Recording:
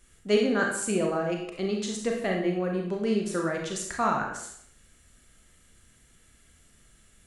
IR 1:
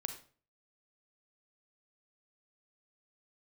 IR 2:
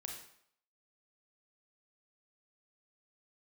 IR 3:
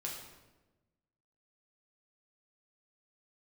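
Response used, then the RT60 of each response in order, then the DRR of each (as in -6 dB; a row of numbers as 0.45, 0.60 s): 2; 0.40, 0.65, 1.1 s; 6.5, 0.5, -2.5 dB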